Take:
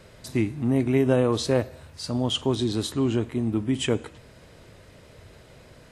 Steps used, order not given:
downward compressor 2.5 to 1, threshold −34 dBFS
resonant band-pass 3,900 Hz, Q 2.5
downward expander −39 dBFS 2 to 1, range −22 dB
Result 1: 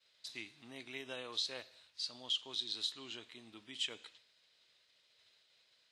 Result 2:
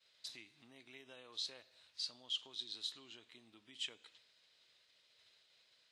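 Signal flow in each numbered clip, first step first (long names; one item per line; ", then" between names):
downward expander, then resonant band-pass, then downward compressor
downward expander, then downward compressor, then resonant band-pass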